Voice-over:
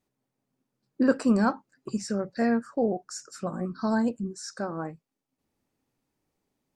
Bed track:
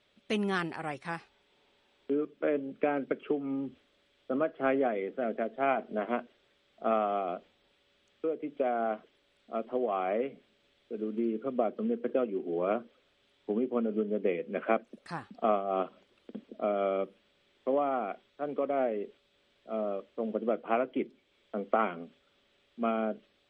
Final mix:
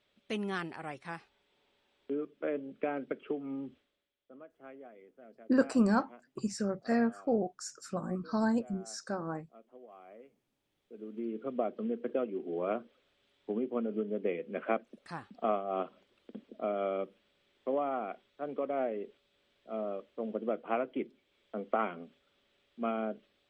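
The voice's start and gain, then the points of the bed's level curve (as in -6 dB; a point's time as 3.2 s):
4.50 s, -4.0 dB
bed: 3.73 s -5 dB
4.19 s -22.5 dB
10.29 s -22.5 dB
11.44 s -3.5 dB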